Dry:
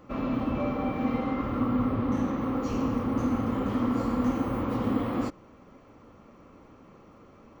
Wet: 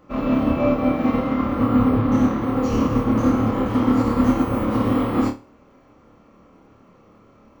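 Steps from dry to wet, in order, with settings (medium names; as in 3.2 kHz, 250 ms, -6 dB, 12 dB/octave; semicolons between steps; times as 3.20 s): flutter echo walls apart 4.7 m, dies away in 0.37 s; upward expansion 1.5:1, over -40 dBFS; trim +8.5 dB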